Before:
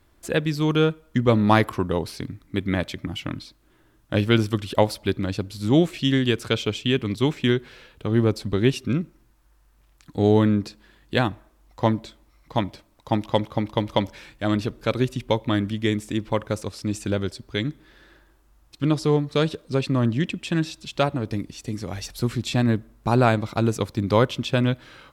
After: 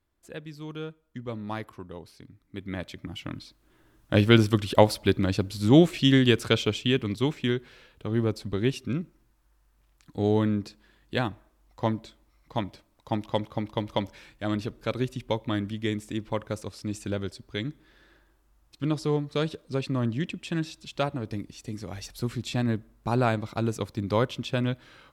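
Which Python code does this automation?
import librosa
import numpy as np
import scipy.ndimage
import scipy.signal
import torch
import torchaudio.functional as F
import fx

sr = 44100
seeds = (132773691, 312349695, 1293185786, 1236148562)

y = fx.gain(x, sr, db=fx.line((2.24, -17.0), (2.8, -9.5), (4.2, 1.0), (6.38, 1.0), (7.51, -6.0)))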